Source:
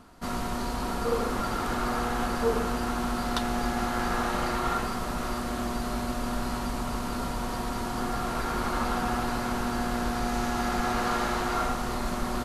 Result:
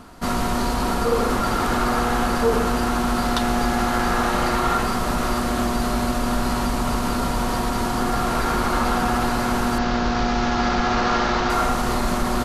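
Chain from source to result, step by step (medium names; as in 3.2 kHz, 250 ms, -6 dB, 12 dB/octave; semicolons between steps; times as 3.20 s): 9.78–11.50 s: CVSD coder 32 kbps; in parallel at +2.5 dB: peak limiter -22.5 dBFS, peak gain reduction 9.5 dB; on the sum: trim +2 dB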